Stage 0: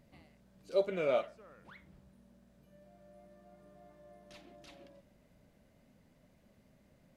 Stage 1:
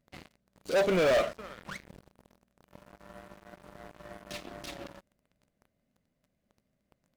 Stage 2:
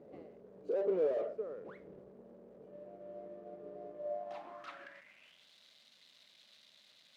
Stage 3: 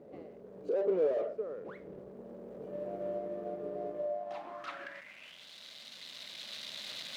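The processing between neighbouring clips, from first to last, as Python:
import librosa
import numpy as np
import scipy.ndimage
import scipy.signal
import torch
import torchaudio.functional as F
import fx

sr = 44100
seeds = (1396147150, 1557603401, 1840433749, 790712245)

y1 = fx.notch(x, sr, hz=900.0, q=9.3)
y1 = fx.leveller(y1, sr, passes=5)
y1 = y1 * librosa.db_to_amplitude(-2.5)
y2 = fx.power_curve(y1, sr, exponent=0.35)
y2 = fx.filter_sweep_bandpass(y2, sr, from_hz=440.0, to_hz=3800.0, start_s=3.91, end_s=5.49, q=4.8)
y2 = y2 * librosa.db_to_amplitude(-2.0)
y3 = fx.recorder_agc(y2, sr, target_db=-32.0, rise_db_per_s=6.8, max_gain_db=30)
y3 = y3 * librosa.db_to_amplitude(2.5)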